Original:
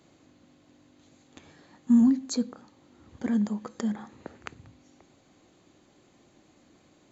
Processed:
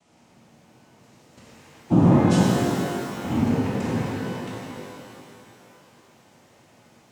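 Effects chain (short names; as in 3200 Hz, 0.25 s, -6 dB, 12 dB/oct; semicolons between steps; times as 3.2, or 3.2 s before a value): noise vocoder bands 4; shimmer reverb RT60 2.8 s, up +12 st, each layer -8 dB, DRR -7.5 dB; gain -3 dB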